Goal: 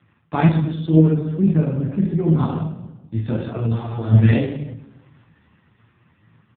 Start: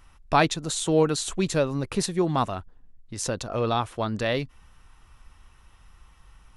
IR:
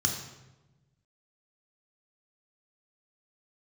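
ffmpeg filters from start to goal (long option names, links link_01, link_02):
-filter_complex "[0:a]asplit=3[link_01][link_02][link_03];[link_01]afade=type=out:start_time=1.04:duration=0.02[link_04];[link_02]lowpass=1700,afade=type=in:start_time=1.04:duration=0.02,afade=type=out:start_time=2.37:duration=0.02[link_05];[link_03]afade=type=in:start_time=2.37:duration=0.02[link_06];[link_04][link_05][link_06]amix=inputs=3:normalize=0[link_07];[1:a]atrim=start_sample=2205,asetrate=52920,aresample=44100[link_08];[link_07][link_08]afir=irnorm=-1:irlink=0,dynaudnorm=framelen=320:gausssize=9:maxgain=14dB,equalizer=frequency=1200:width_type=o:width=0.34:gain=-4.5,asplit=2[link_09][link_10];[link_10]adelay=35,volume=-11dB[link_11];[link_09][link_11]amix=inputs=2:normalize=0,asplit=3[link_12][link_13][link_14];[link_12]afade=type=out:start_time=3.5:duration=0.02[link_15];[link_13]acompressor=threshold=-16dB:ratio=8,afade=type=in:start_time=3.5:duration=0.02,afade=type=out:start_time=4.1:duration=0.02[link_16];[link_14]afade=type=in:start_time=4.1:duration=0.02[link_17];[link_15][link_16][link_17]amix=inputs=3:normalize=0,flanger=delay=18:depth=6.2:speed=1.9,volume=1dB" -ar 8000 -c:a libopencore_amrnb -b:a 4750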